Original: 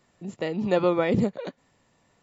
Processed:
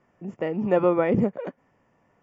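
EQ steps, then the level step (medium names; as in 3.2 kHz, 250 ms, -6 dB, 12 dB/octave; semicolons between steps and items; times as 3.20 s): boxcar filter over 11 samples; bass shelf 120 Hz -6 dB; +2.5 dB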